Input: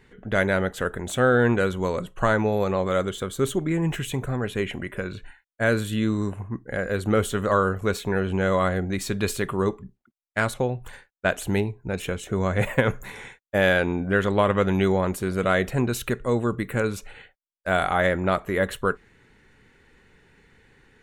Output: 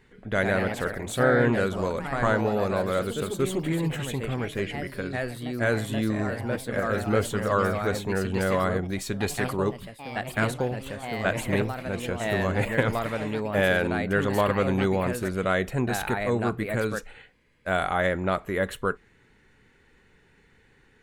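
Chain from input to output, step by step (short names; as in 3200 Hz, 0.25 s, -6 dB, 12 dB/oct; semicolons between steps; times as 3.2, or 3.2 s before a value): echoes that change speed 0.139 s, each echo +2 st, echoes 3, each echo -6 dB; gain -3 dB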